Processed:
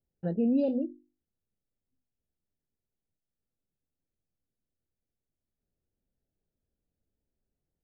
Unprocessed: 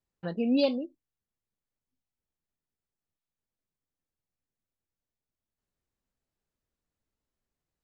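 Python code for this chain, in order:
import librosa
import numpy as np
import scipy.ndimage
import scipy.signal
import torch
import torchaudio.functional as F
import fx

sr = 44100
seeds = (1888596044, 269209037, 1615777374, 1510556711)

p1 = fx.hum_notches(x, sr, base_hz=50, count=7)
p2 = fx.over_compress(p1, sr, threshold_db=-29.0, ratio=-1.0)
p3 = p1 + (p2 * librosa.db_to_amplitude(0.5))
p4 = np.convolve(p3, np.full(40, 1.0 / 40))[:len(p3)]
y = p4 * librosa.db_to_amplitude(-2.5)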